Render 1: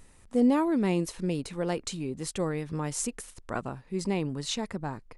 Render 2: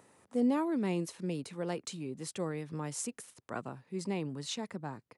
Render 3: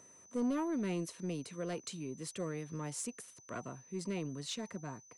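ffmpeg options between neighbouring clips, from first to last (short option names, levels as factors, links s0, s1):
-filter_complex "[0:a]highpass=f=110:w=0.5412,highpass=f=110:w=1.3066,acrossover=split=310|1400[s0][s1][s2];[s1]acompressor=mode=upward:threshold=0.00282:ratio=2.5[s3];[s0][s3][s2]amix=inputs=3:normalize=0,volume=0.501"
-af "asoftclip=type=tanh:threshold=0.0501,asuperstop=centerf=820:order=20:qfactor=6.4,aeval=exprs='val(0)+0.00158*sin(2*PI*6100*n/s)':c=same,volume=0.794"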